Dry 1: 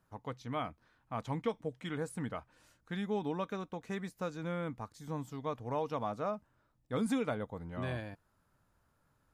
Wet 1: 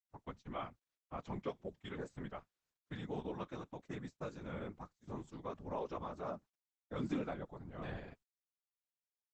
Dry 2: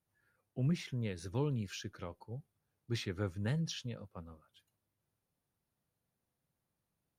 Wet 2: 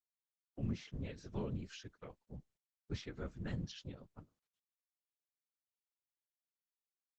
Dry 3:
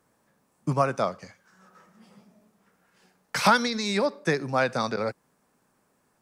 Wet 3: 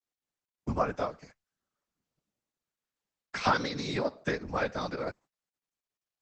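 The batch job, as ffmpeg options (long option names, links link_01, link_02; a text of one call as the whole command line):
ffmpeg -i in.wav -filter_complex "[0:a]agate=range=-28dB:threshold=-47dB:ratio=16:detection=peak,acrossover=split=6400[link_01][link_02];[link_02]acompressor=threshold=-60dB:ratio=16[link_03];[link_01][link_03]amix=inputs=2:normalize=0,afftfilt=real='hypot(re,im)*cos(2*PI*random(0))':imag='hypot(re,im)*sin(2*PI*random(1))':win_size=512:overlap=0.75" -ar 48000 -c:a libopus -b:a 12k out.opus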